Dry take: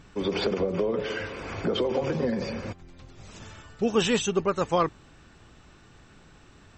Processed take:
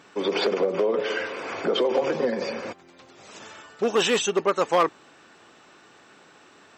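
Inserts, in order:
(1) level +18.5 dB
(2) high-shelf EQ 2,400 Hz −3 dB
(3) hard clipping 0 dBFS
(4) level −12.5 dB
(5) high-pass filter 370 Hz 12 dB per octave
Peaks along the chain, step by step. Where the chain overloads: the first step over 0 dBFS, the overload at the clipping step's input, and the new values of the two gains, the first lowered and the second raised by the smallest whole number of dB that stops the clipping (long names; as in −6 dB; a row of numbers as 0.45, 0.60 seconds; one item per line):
+7.5, +7.0, 0.0, −12.5, −8.5 dBFS
step 1, 7.0 dB
step 1 +11.5 dB, step 4 −5.5 dB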